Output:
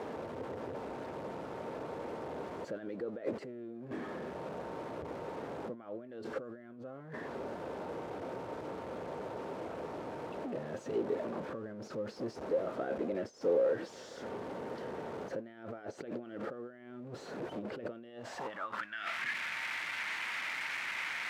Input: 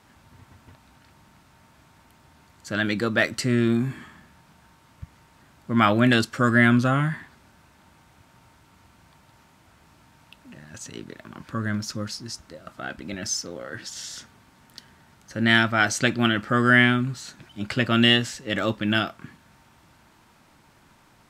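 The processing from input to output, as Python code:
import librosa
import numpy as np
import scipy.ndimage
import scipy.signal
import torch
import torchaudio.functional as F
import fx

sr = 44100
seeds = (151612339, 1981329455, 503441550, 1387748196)

y = x + 0.5 * 10.0 ** (-29.0 / 20.0) * np.sign(x)
y = fx.over_compress(y, sr, threshold_db=-30.0, ratio=-1.0)
y = fx.filter_sweep_bandpass(y, sr, from_hz=470.0, to_hz=2100.0, start_s=18.05, end_s=19.08, q=3.4)
y = F.gain(torch.from_numpy(y), 2.0).numpy()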